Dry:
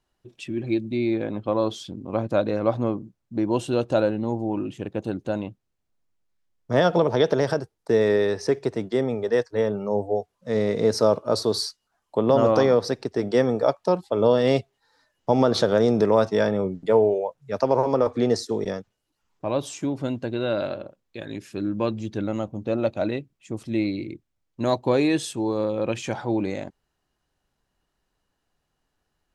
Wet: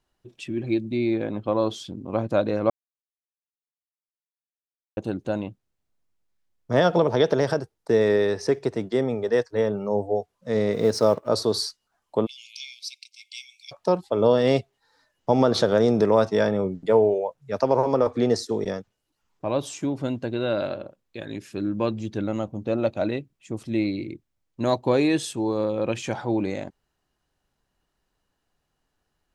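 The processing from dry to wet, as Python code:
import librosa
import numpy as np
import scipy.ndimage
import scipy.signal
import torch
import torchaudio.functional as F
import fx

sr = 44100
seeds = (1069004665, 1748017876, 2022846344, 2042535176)

y = fx.law_mismatch(x, sr, coded='A', at=(10.72, 11.27), fade=0.02)
y = fx.brickwall_highpass(y, sr, low_hz=2100.0, at=(12.25, 13.71), fade=0.02)
y = fx.edit(y, sr, fx.silence(start_s=2.7, length_s=2.27), tone=tone)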